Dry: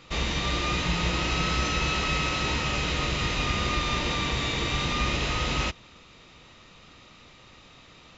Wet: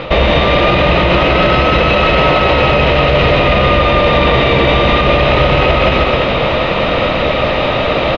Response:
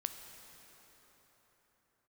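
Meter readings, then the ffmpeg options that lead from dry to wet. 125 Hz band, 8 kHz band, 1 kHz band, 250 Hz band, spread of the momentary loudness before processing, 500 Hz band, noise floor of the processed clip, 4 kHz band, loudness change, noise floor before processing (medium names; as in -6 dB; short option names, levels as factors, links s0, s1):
+16.0 dB, no reading, +18.5 dB, +17.0 dB, 2 LU, +25.5 dB, -15 dBFS, +12.5 dB, +15.5 dB, -52 dBFS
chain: -filter_complex "[0:a]lowpass=f=3400:w=0.5412,lowpass=f=3400:w=1.3066,equalizer=f=590:w=2:g=14,areverse,acompressor=threshold=0.0158:ratio=12,areverse,aecho=1:1:180|324|439.2|531.4|605.1:0.631|0.398|0.251|0.158|0.1,asplit=2[s0][s1];[1:a]atrim=start_sample=2205,adelay=15[s2];[s1][s2]afir=irnorm=-1:irlink=0,volume=0.282[s3];[s0][s3]amix=inputs=2:normalize=0,alimiter=level_in=50.1:limit=0.891:release=50:level=0:latency=1,volume=0.891"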